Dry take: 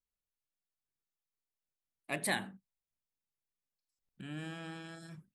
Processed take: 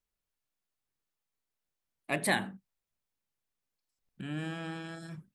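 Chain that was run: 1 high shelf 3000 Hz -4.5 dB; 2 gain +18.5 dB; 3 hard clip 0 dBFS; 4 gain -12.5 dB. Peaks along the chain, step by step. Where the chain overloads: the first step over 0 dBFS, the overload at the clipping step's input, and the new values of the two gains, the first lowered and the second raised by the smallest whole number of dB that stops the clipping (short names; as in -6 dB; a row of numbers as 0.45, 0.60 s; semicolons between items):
-21.0, -2.5, -2.5, -15.0 dBFS; no overload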